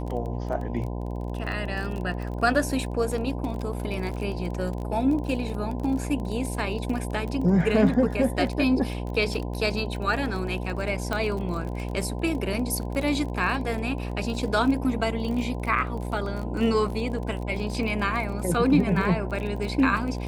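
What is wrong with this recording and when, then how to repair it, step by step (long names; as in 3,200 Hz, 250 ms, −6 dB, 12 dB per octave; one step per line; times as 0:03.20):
mains buzz 60 Hz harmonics 17 −31 dBFS
surface crackle 26 per second −31 dBFS
0:11.13: click −14 dBFS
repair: click removal
hum removal 60 Hz, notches 17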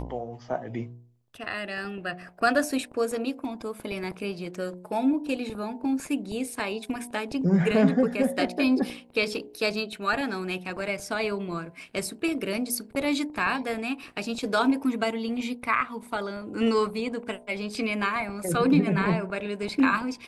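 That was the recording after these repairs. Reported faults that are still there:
none of them is left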